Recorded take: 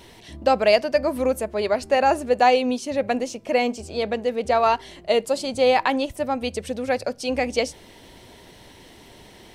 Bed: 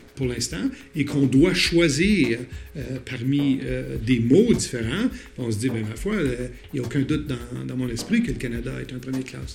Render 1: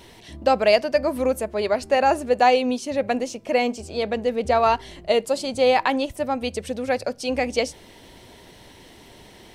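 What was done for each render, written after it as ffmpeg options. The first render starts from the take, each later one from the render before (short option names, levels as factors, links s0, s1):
-filter_complex "[0:a]asettb=1/sr,asplit=3[s0][s1][s2];[s0]atrim=end=4.164[s3];[s1]atrim=start=4.16:end=5.12,asetpts=PTS-STARTPTS,afade=t=in:d=0.004:c=qsin,afade=t=out:st=0.956:d=0.004:c=qsin,lowshelf=f=150:g=8[s4];[s2]atrim=start=5.116[s5];[s3][s4]acrossfade=d=0.004:c1=hsin:c2=qsin[s6];[s6][s5]acrossfade=d=0.004:c1=qsin:c2=hsin"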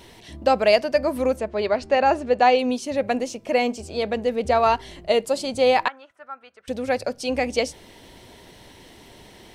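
-filter_complex "[0:a]asettb=1/sr,asplit=3[s0][s1][s2];[s0]atrim=end=1.364[s3];[s1]atrim=start=1.36:end=2.59,asetpts=PTS-STARTPTS,afade=t=in:d=0.004:c=qsin,afade=t=out:st=1.226:d=0.004:c=qsin,lowpass=5200[s4];[s2]atrim=start=2.586[s5];[s3][s4]acrossfade=d=0.004:c1=hsin:c2=qsin[s6];[s6][s5]acrossfade=d=0.004:c1=qsin:c2=hsin,asettb=1/sr,asplit=3[s7][s8][s9];[s7]atrim=end=5.884[s10];[s8]atrim=start=5.88:end=6.68,asetpts=PTS-STARTPTS,afade=t=in:d=0.004:c=qsin,afade=t=out:st=0.796:d=0.004:c=qsin,bandpass=f=1400:t=q:w=5.5[s11];[s9]atrim=start=6.676[s12];[s10][s11]acrossfade=d=0.004:c1=hsin:c2=qsin[s13];[s13][s12]acrossfade=d=0.004:c1=qsin:c2=hsin"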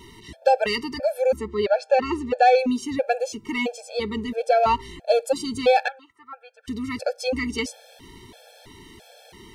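-af "aeval=exprs='0.596*(cos(1*acos(clip(val(0)/0.596,-1,1)))-cos(1*PI/2))+0.0422*(cos(5*acos(clip(val(0)/0.596,-1,1)))-cos(5*PI/2))':c=same,afftfilt=real='re*gt(sin(2*PI*1.5*pts/sr)*(1-2*mod(floor(b*sr/1024/450),2)),0)':imag='im*gt(sin(2*PI*1.5*pts/sr)*(1-2*mod(floor(b*sr/1024/450),2)),0)':win_size=1024:overlap=0.75"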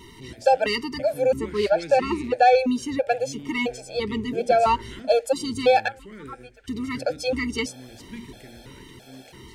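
-filter_complex "[1:a]volume=0.126[s0];[0:a][s0]amix=inputs=2:normalize=0"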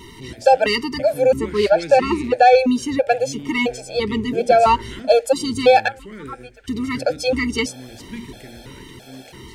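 -af "volume=1.88,alimiter=limit=0.708:level=0:latency=1"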